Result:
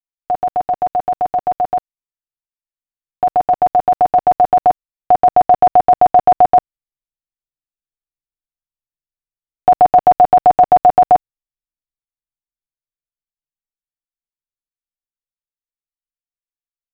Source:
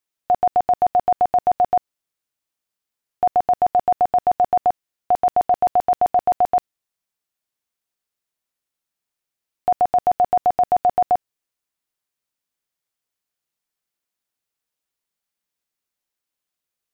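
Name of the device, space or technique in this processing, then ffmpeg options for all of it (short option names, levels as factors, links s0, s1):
voice memo with heavy noise removal: -af "aecho=1:1:6.5:0.64,anlmdn=158,dynaudnorm=f=470:g=17:m=3.16"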